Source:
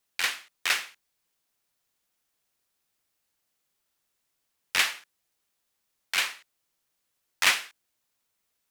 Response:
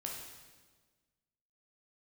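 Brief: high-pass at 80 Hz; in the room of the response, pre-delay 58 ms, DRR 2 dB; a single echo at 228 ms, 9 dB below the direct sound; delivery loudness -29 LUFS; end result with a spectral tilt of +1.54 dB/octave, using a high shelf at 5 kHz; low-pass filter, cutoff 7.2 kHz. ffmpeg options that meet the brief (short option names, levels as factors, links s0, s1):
-filter_complex "[0:a]highpass=80,lowpass=7200,highshelf=f=5000:g=-4,aecho=1:1:228:0.355,asplit=2[s0][s1];[1:a]atrim=start_sample=2205,adelay=58[s2];[s1][s2]afir=irnorm=-1:irlink=0,volume=0.841[s3];[s0][s3]amix=inputs=2:normalize=0,volume=0.841"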